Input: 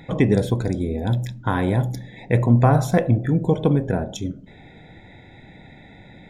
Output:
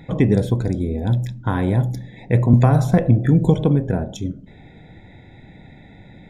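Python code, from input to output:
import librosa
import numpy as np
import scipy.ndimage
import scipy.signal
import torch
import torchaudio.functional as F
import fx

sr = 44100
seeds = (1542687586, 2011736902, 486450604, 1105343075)

y = fx.low_shelf(x, sr, hz=340.0, db=6.0)
y = fx.band_squash(y, sr, depth_pct=100, at=(2.53, 3.64))
y = y * librosa.db_to_amplitude(-2.5)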